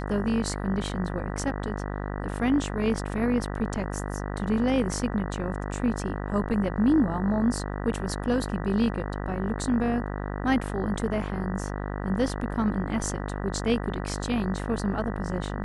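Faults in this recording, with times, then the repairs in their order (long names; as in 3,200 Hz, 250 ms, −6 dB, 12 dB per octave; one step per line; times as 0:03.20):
mains buzz 50 Hz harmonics 39 −32 dBFS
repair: hum removal 50 Hz, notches 39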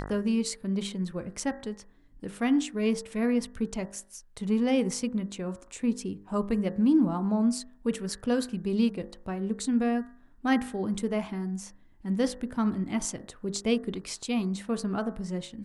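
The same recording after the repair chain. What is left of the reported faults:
none of them is left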